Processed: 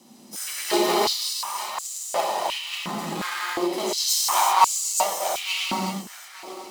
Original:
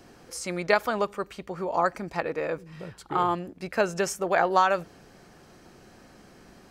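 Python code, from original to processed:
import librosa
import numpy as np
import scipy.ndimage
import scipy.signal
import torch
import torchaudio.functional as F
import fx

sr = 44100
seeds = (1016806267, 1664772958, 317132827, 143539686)

p1 = fx.lower_of_two(x, sr, delay_ms=1.0)
p2 = fx.tilt_eq(p1, sr, slope=3.0)
p3 = p2 + fx.echo_feedback(p2, sr, ms=882, feedback_pct=21, wet_db=-5.5, dry=0)
p4 = fx.rotary_switch(p3, sr, hz=0.8, then_hz=8.0, switch_at_s=2.32)
p5 = fx.rev_gated(p4, sr, seeds[0], gate_ms=400, shape='flat', drr_db=-7.5)
p6 = fx.sample_hold(p5, sr, seeds[1], rate_hz=2900.0, jitter_pct=0)
p7 = p5 + F.gain(torch.from_numpy(p6), -9.0).numpy()
p8 = fx.peak_eq(p7, sr, hz=1700.0, db=-11.5, octaves=0.97)
y = fx.filter_held_highpass(p8, sr, hz=2.8, low_hz=220.0, high_hz=7300.0)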